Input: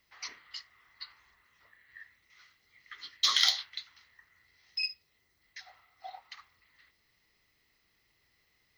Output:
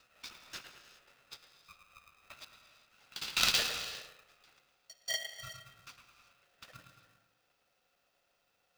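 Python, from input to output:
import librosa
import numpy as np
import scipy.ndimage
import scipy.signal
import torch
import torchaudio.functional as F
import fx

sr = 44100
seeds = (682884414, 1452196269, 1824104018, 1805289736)

p1 = fx.block_reorder(x, sr, ms=153.0, group=5)
p2 = fx.dynamic_eq(p1, sr, hz=2600.0, q=1.6, threshold_db=-49.0, ratio=4.0, max_db=7)
p3 = scipy.signal.sosfilt(scipy.signal.butter(2, 49.0, 'highpass', fs=sr, output='sos'), p2)
p4 = fx.bass_treble(p3, sr, bass_db=7, treble_db=-1)
p5 = p4 + fx.echo_bbd(p4, sr, ms=108, stages=2048, feedback_pct=45, wet_db=-6.5, dry=0)
p6 = fx.rev_gated(p5, sr, seeds[0], gate_ms=430, shape='flat', drr_db=8.5)
p7 = p6 * np.sign(np.sin(2.0 * np.pi * 630.0 * np.arange(len(p6)) / sr))
y = p7 * librosa.db_to_amplitude(-6.0)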